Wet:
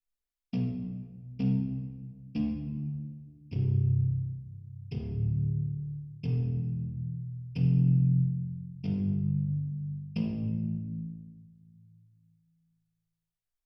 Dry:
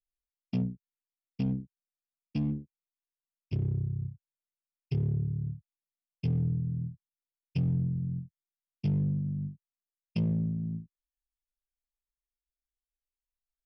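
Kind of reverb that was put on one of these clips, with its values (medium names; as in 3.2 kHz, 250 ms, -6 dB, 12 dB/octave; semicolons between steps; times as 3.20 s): simulated room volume 1300 m³, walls mixed, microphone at 1.8 m; trim -3 dB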